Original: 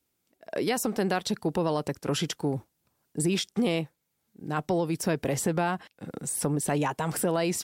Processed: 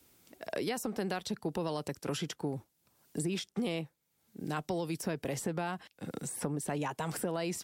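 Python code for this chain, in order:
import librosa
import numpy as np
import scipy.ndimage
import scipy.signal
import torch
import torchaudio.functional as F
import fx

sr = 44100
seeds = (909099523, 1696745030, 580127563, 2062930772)

y = fx.band_squash(x, sr, depth_pct=70)
y = y * 10.0 ** (-8.0 / 20.0)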